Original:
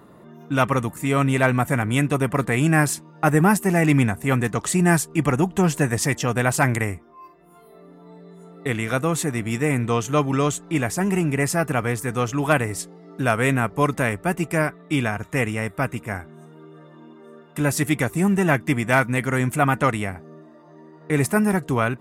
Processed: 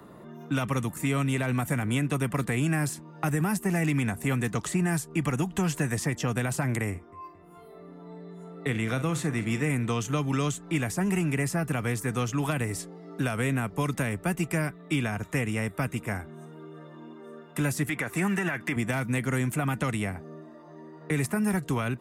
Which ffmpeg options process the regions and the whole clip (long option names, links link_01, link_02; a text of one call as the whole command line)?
ffmpeg -i in.wav -filter_complex "[0:a]asettb=1/sr,asplit=3[link_01][link_02][link_03];[link_01]atrim=end=6.904[link_04];[link_02]atrim=start=6.9:end=9.7,asetpts=PTS-STARTPTS,afade=type=in:duration=0.004:curve=qsin,afade=type=out:start_time=2.796:duration=0.004:curve=qsin,highshelf=frequency=7300:gain=-8.5,asplit=2[link_05][link_06];[link_06]adelay=45,volume=-13dB[link_07];[link_05][link_07]amix=inputs=2:normalize=0,atrim=end_sample=123480,asplit=2[link_08][link_09];[link_09]adelay=222,lowpass=frequency=5000:poles=1,volume=-23dB,asplit=2[link_10][link_11];[link_11]adelay=222,lowpass=frequency=5000:poles=1,volume=0.53,asplit=2[link_12][link_13];[link_13]adelay=222,lowpass=frequency=5000:poles=1,volume=0.53,asplit=2[link_14][link_15];[link_15]adelay=222,lowpass=frequency=5000:poles=1,volume=0.53[link_16];[link_08][link_10][link_12][link_14][link_16]amix=inputs=5:normalize=0,atrim=end_sample=123480[link_17];[link_03]atrim=start=9.696[link_18];[link_04][link_17]acrossfade=duration=0.004:curve1=hsin:curve2=qsin[link_19];[link_19][link_18]acrossfade=duration=0.004:curve1=qsin:curve2=hsin,asettb=1/sr,asplit=3[link_20][link_21][link_22];[link_20]atrim=end=17.894[link_23];[link_21]atrim=start=17.89:end=18.76,asetpts=PTS-STARTPTS,afade=type=in:duration=0.004:curve=qsin,afade=type=out:start_time=0.866:duration=0.004:curve=qsin,highpass=frequency=260:poles=1,equalizer=frequency=1700:width=0.76:gain=13.5[link_24];[link_22]atrim=start=18.756[link_25];[link_23][link_24]acrossfade=duration=0.004:curve1=hsin:curve2=qsin[link_26];[link_26][link_25]acrossfade=duration=0.004:curve1=qsin:curve2=hsin,alimiter=limit=-10.5dB:level=0:latency=1:release=60,acrossover=split=130|260|1000|2400[link_27][link_28][link_29][link_30][link_31];[link_27]acompressor=threshold=-37dB:ratio=4[link_32];[link_28]acompressor=threshold=-29dB:ratio=4[link_33];[link_29]acompressor=threshold=-35dB:ratio=4[link_34];[link_30]acompressor=threshold=-38dB:ratio=4[link_35];[link_31]acompressor=threshold=-36dB:ratio=4[link_36];[link_32][link_33][link_34][link_35][link_36]amix=inputs=5:normalize=0" out.wav